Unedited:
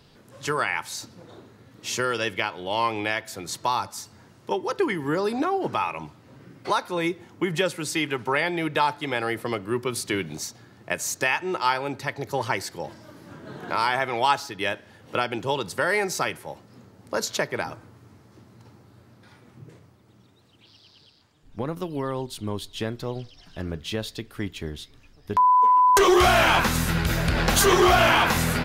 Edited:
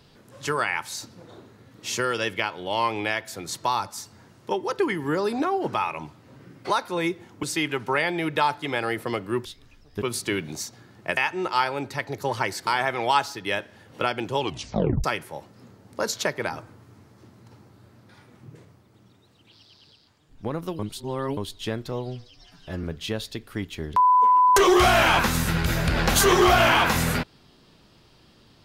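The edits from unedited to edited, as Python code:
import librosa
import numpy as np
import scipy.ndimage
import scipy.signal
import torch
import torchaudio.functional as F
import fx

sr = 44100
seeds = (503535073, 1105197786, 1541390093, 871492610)

y = fx.edit(x, sr, fx.cut(start_s=7.43, length_s=0.39),
    fx.cut(start_s=10.99, length_s=0.27),
    fx.cut(start_s=12.76, length_s=1.05),
    fx.tape_stop(start_s=15.52, length_s=0.66),
    fx.reverse_span(start_s=21.93, length_s=0.58),
    fx.stretch_span(start_s=23.06, length_s=0.61, factor=1.5),
    fx.move(start_s=24.77, length_s=0.57, to_s=9.84), tone=tone)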